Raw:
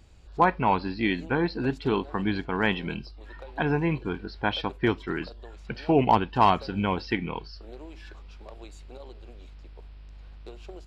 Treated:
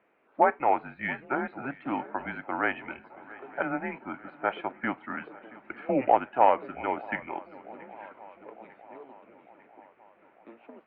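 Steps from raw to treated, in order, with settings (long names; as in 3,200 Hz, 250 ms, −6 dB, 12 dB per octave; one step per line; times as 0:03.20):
feedback echo with a long and a short gap by turns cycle 900 ms, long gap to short 3 to 1, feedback 57%, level −21 dB
pitch vibrato 1.8 Hz 30 cents
single-sideband voice off tune −130 Hz 460–2,400 Hz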